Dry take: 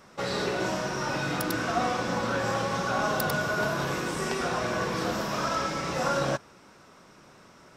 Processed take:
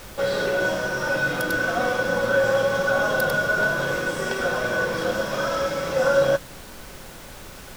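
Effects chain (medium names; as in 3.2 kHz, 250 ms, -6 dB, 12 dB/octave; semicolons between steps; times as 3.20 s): small resonant body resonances 540/1500/3300 Hz, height 14 dB, ringing for 55 ms; added noise pink -41 dBFS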